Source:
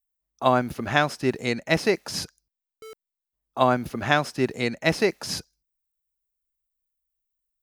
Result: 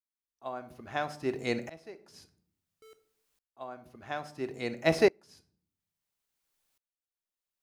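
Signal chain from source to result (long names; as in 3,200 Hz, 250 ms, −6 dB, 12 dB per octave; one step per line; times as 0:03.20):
dynamic equaliser 640 Hz, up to +6 dB, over −32 dBFS, Q 0.76
on a send at −10 dB: convolution reverb RT60 0.55 s, pre-delay 3 ms
on the sum: bit-depth reduction 12 bits, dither triangular
tremolo with a ramp in dB swelling 0.59 Hz, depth 28 dB
level −4.5 dB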